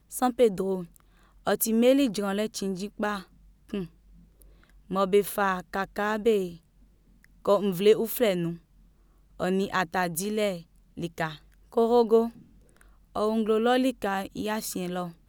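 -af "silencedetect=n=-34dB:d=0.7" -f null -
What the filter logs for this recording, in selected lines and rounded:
silence_start: 6.49
silence_end: 7.45 | silence_duration: 0.96
silence_start: 8.55
silence_end: 9.40 | silence_duration: 0.85
silence_start: 12.29
silence_end: 13.15 | silence_duration: 0.87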